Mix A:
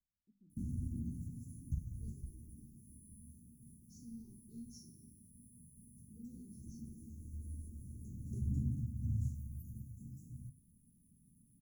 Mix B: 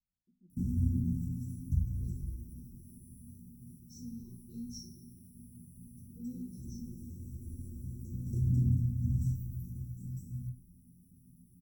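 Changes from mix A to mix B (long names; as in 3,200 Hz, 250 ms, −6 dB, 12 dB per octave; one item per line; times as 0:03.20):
background +4.5 dB
master: add EQ curve with evenly spaced ripples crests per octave 2, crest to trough 17 dB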